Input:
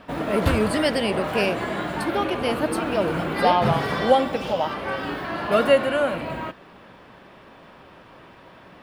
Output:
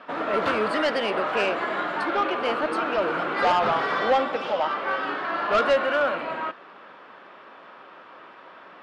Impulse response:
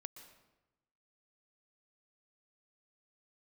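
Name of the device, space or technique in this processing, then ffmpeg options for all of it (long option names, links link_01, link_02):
intercom: -af "highpass=350,lowpass=4200,equalizer=frequency=1300:width_type=o:width=0.58:gain=7,asoftclip=type=tanh:threshold=-14.5dB"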